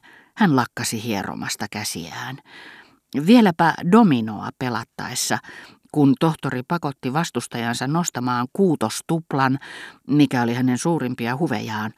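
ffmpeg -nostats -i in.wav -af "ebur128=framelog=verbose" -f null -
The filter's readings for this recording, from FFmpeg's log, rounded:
Integrated loudness:
  I:         -21.1 LUFS
  Threshold: -31.5 LUFS
Loudness range:
  LRA:         3.8 LU
  Threshold: -41.3 LUFS
  LRA low:   -23.2 LUFS
  LRA high:  -19.4 LUFS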